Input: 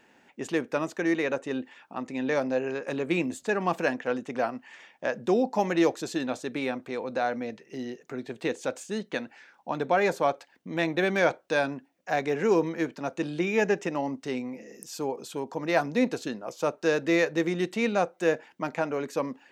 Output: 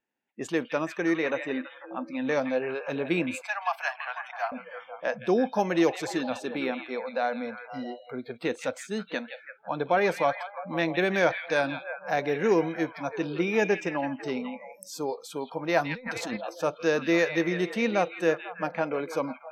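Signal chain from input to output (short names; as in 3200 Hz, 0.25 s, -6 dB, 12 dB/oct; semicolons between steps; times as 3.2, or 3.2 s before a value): on a send: delay with a stepping band-pass 0.165 s, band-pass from 2700 Hz, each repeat -0.7 oct, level -5 dB; 15.86–16.37 on the sum: negative-ratio compressor -34 dBFS, ratio -1; spectral noise reduction 27 dB; 3.41–4.52 steep high-pass 670 Hz 72 dB/oct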